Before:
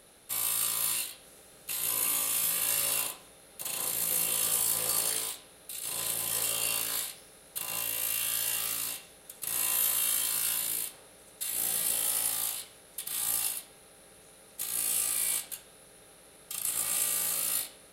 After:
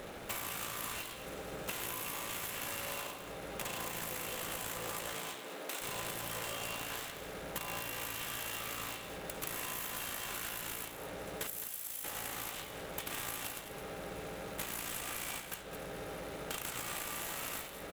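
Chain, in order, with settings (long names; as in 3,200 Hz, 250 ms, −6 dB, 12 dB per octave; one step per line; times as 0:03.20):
running median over 9 samples
0:05.13–0:05.80: high-pass filter 100 Hz → 340 Hz 24 dB per octave
0:11.47–0:12.04: first-order pre-emphasis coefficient 0.8
downward compressor 12 to 1, threshold −52 dBFS, peak gain reduction 19 dB
single-tap delay 212 ms −10 dB
level +14.5 dB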